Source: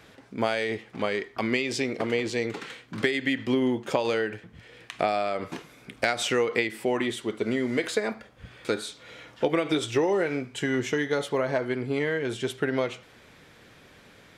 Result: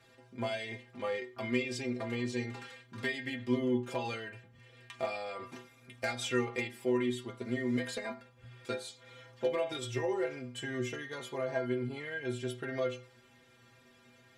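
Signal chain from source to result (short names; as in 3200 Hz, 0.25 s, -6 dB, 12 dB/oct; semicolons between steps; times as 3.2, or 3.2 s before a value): one-sided clip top -18 dBFS, bottom -13 dBFS; metallic resonator 120 Hz, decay 0.33 s, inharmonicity 0.008; gain +2 dB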